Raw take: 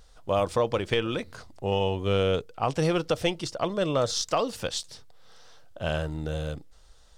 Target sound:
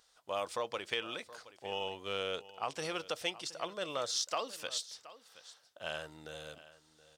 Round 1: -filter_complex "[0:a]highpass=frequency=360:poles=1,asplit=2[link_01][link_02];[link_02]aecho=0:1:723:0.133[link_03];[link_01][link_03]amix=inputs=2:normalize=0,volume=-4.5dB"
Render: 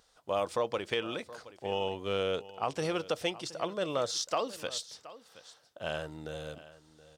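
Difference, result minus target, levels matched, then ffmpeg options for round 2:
500 Hz band +3.0 dB
-filter_complex "[0:a]highpass=frequency=1300:poles=1,asplit=2[link_01][link_02];[link_02]aecho=0:1:723:0.133[link_03];[link_01][link_03]amix=inputs=2:normalize=0,volume=-4.5dB"

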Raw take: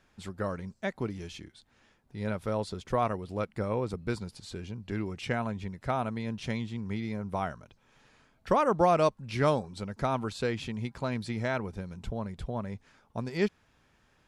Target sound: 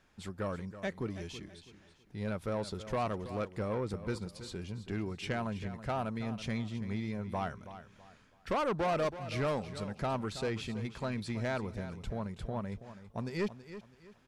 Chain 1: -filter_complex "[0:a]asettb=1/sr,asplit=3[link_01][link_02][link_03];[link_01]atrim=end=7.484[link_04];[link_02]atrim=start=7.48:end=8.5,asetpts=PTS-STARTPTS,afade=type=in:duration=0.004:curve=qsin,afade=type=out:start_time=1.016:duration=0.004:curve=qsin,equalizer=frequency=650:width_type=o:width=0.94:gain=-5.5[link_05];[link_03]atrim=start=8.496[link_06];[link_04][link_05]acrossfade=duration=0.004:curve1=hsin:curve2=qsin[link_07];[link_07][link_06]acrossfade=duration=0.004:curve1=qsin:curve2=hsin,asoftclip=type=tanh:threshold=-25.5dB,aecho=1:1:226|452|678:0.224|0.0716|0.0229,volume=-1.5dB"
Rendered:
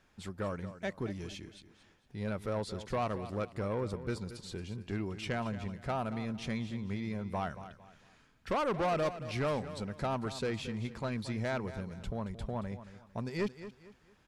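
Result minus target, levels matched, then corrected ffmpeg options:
echo 101 ms early
-filter_complex "[0:a]asettb=1/sr,asplit=3[link_01][link_02][link_03];[link_01]atrim=end=7.484[link_04];[link_02]atrim=start=7.48:end=8.5,asetpts=PTS-STARTPTS,afade=type=in:duration=0.004:curve=qsin,afade=type=out:start_time=1.016:duration=0.004:curve=qsin,equalizer=frequency=650:width_type=o:width=0.94:gain=-5.5[link_05];[link_03]atrim=start=8.496[link_06];[link_04][link_05]acrossfade=duration=0.004:curve1=hsin:curve2=qsin[link_07];[link_07][link_06]acrossfade=duration=0.004:curve1=qsin:curve2=hsin,asoftclip=type=tanh:threshold=-25.5dB,aecho=1:1:327|654|981:0.224|0.0716|0.0229,volume=-1.5dB"

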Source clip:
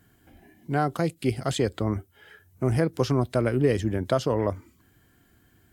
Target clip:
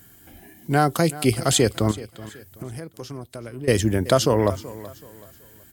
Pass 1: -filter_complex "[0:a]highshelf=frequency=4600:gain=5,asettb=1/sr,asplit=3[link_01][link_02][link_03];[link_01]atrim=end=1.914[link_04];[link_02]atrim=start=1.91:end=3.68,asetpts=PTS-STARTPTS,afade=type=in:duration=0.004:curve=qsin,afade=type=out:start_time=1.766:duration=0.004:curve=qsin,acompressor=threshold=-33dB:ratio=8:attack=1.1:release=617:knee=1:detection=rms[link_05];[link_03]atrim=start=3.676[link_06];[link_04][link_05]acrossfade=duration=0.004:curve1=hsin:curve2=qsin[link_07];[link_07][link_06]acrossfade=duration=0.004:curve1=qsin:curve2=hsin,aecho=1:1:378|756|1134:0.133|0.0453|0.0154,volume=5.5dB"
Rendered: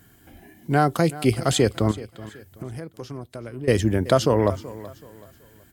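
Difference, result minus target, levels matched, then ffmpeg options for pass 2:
8,000 Hz band −5.5 dB
-filter_complex "[0:a]highshelf=frequency=4600:gain=13.5,asettb=1/sr,asplit=3[link_01][link_02][link_03];[link_01]atrim=end=1.914[link_04];[link_02]atrim=start=1.91:end=3.68,asetpts=PTS-STARTPTS,afade=type=in:duration=0.004:curve=qsin,afade=type=out:start_time=1.766:duration=0.004:curve=qsin,acompressor=threshold=-33dB:ratio=8:attack=1.1:release=617:knee=1:detection=rms[link_05];[link_03]atrim=start=3.676[link_06];[link_04][link_05]acrossfade=duration=0.004:curve1=hsin:curve2=qsin[link_07];[link_07][link_06]acrossfade=duration=0.004:curve1=qsin:curve2=hsin,aecho=1:1:378|756|1134:0.133|0.0453|0.0154,volume=5.5dB"

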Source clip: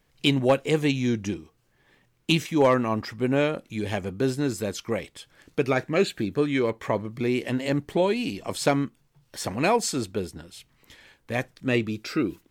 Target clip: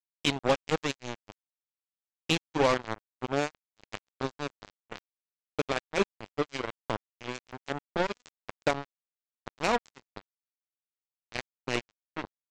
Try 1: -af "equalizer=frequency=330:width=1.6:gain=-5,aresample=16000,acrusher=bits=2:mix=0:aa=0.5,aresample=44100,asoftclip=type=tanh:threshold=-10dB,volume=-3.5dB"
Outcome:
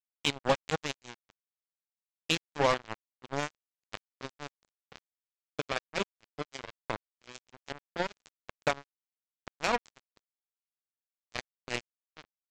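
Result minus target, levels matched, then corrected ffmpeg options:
250 Hz band −4.0 dB
-af "aresample=16000,acrusher=bits=2:mix=0:aa=0.5,aresample=44100,asoftclip=type=tanh:threshold=-10dB,volume=-3.5dB"

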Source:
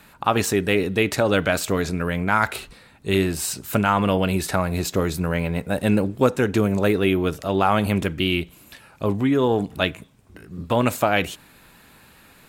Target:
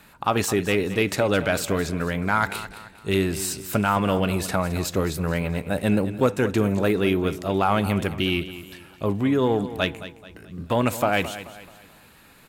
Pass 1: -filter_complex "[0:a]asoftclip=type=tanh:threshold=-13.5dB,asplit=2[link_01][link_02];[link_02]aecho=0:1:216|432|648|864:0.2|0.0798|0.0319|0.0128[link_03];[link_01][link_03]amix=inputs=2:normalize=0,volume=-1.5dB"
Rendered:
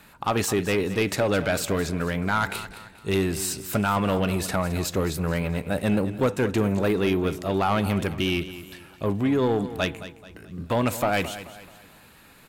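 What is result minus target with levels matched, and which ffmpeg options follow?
soft clipping: distortion +11 dB
-filter_complex "[0:a]asoftclip=type=tanh:threshold=-5dB,asplit=2[link_01][link_02];[link_02]aecho=0:1:216|432|648|864:0.2|0.0798|0.0319|0.0128[link_03];[link_01][link_03]amix=inputs=2:normalize=0,volume=-1.5dB"

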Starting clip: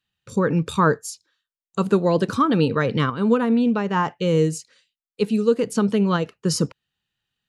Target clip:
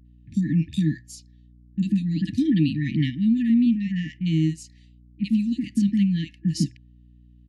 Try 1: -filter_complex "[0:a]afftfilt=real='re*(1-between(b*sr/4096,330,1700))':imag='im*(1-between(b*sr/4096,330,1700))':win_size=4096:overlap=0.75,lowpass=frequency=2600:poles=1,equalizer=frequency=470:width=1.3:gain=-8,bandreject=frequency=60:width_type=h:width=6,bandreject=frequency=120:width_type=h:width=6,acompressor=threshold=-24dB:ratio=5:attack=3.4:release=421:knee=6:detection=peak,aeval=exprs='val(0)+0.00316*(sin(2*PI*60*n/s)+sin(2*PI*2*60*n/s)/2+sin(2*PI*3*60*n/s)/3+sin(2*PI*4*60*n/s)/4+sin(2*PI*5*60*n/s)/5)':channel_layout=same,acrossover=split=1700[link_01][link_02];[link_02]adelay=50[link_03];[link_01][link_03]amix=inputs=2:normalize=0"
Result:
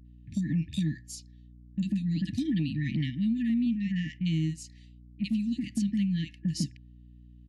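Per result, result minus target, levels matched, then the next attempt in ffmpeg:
downward compressor: peak gain reduction +8 dB; 500 Hz band −3.0 dB
-filter_complex "[0:a]afftfilt=real='re*(1-between(b*sr/4096,330,1700))':imag='im*(1-between(b*sr/4096,330,1700))':win_size=4096:overlap=0.75,lowpass=frequency=2600:poles=1,equalizer=frequency=470:width=1.3:gain=-8,bandreject=frequency=60:width_type=h:width=6,bandreject=frequency=120:width_type=h:width=6,aeval=exprs='val(0)+0.00316*(sin(2*PI*60*n/s)+sin(2*PI*2*60*n/s)/2+sin(2*PI*3*60*n/s)/3+sin(2*PI*4*60*n/s)/4+sin(2*PI*5*60*n/s)/5)':channel_layout=same,acrossover=split=1700[link_01][link_02];[link_02]adelay=50[link_03];[link_01][link_03]amix=inputs=2:normalize=0"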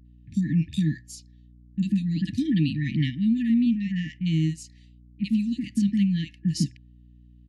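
500 Hz band −3.5 dB
-filter_complex "[0:a]afftfilt=real='re*(1-between(b*sr/4096,330,1700))':imag='im*(1-between(b*sr/4096,330,1700))':win_size=4096:overlap=0.75,lowpass=frequency=2600:poles=1,equalizer=frequency=470:width=1.3:gain=3.5,bandreject=frequency=60:width_type=h:width=6,bandreject=frequency=120:width_type=h:width=6,aeval=exprs='val(0)+0.00316*(sin(2*PI*60*n/s)+sin(2*PI*2*60*n/s)/2+sin(2*PI*3*60*n/s)/3+sin(2*PI*4*60*n/s)/4+sin(2*PI*5*60*n/s)/5)':channel_layout=same,acrossover=split=1700[link_01][link_02];[link_02]adelay=50[link_03];[link_01][link_03]amix=inputs=2:normalize=0"

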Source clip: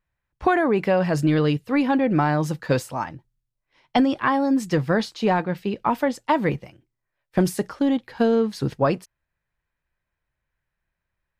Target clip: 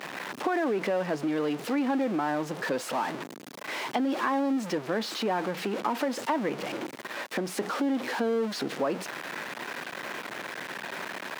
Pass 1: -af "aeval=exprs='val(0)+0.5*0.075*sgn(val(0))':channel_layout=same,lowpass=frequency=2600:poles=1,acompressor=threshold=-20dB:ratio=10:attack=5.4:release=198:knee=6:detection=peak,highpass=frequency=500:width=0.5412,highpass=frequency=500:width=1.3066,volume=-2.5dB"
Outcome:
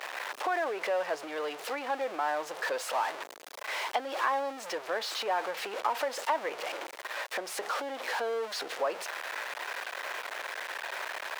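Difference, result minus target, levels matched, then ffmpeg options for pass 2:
250 Hz band −15.0 dB
-af "aeval=exprs='val(0)+0.5*0.075*sgn(val(0))':channel_layout=same,lowpass=frequency=2600:poles=1,acompressor=threshold=-20dB:ratio=10:attack=5.4:release=198:knee=6:detection=peak,highpass=frequency=230:width=0.5412,highpass=frequency=230:width=1.3066,volume=-2.5dB"

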